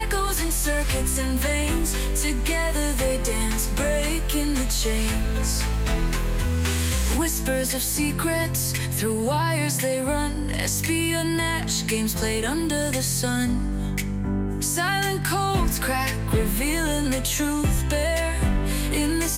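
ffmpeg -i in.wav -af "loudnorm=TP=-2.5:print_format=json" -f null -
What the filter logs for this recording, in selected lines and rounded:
"input_i" : "-23.8",
"input_tp" : "-10.0",
"input_lra" : "0.8",
"input_thresh" : "-33.8",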